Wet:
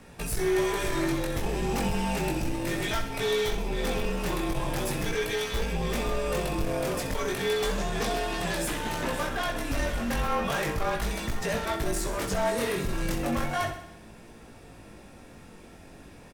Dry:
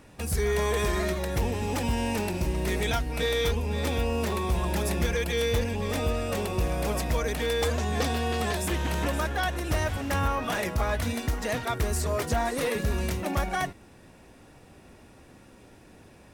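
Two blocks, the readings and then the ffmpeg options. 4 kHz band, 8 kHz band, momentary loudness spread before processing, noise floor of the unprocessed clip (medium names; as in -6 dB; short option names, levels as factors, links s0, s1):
0.0 dB, 0.0 dB, 3 LU, -53 dBFS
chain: -af "afreqshift=-40,asoftclip=type=tanh:threshold=0.0447,flanger=delay=17.5:depth=4.6:speed=0.35,aecho=1:1:64|128|192|256|320|384|448:0.316|0.18|0.103|0.0586|0.0334|0.019|0.0108,volume=2"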